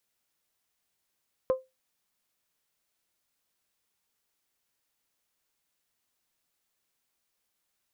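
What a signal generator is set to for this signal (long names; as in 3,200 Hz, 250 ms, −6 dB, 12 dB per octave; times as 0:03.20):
struck glass bell, lowest mode 520 Hz, decay 0.21 s, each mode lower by 12 dB, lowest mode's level −18 dB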